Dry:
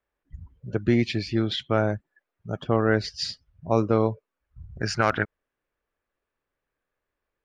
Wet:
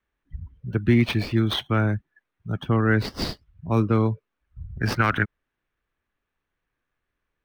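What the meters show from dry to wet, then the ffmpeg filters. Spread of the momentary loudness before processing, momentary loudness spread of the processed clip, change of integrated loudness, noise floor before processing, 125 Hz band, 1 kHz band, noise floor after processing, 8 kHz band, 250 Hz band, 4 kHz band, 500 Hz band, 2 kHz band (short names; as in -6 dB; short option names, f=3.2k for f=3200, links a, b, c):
13 LU, 19 LU, +2.0 dB, -85 dBFS, +5.5 dB, 0.0 dB, -82 dBFS, -3.5 dB, +2.5 dB, +0.5 dB, -3.5 dB, +3.0 dB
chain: -filter_complex "[0:a]equalizer=f=610:t=o:w=1.4:g=-13.5,acrossover=split=200|490|4200[a][b][c][d];[d]acrusher=samples=18:mix=1:aa=0.000001[e];[a][b][c][e]amix=inputs=4:normalize=0,volume=6dB"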